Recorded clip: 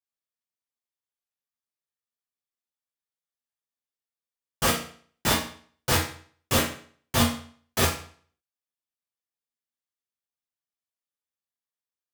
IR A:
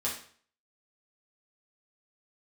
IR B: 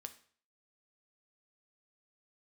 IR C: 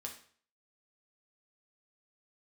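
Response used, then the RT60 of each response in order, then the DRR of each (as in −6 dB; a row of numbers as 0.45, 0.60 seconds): A; 0.50, 0.50, 0.50 seconds; −6.5, 7.5, 0.5 decibels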